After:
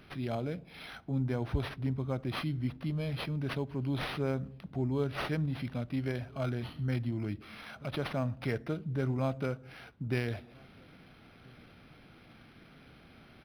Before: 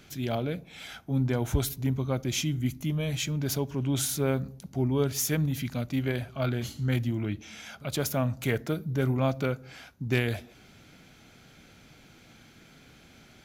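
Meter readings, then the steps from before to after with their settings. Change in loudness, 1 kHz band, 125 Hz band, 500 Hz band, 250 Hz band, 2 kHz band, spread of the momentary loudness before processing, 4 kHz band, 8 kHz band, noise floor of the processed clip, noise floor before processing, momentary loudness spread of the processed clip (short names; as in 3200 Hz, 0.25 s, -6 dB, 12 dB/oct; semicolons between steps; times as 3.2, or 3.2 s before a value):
-5.5 dB, -3.5 dB, -5.0 dB, -5.0 dB, -5.0 dB, -5.0 dB, 9 LU, -8.0 dB, under -25 dB, -57 dBFS, -55 dBFS, 10 LU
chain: in parallel at 0 dB: compressor, threshold -37 dBFS, peak gain reduction 16.5 dB; on the sum: outdoor echo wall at 230 m, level -28 dB; decimation joined by straight lines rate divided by 6×; gain -7 dB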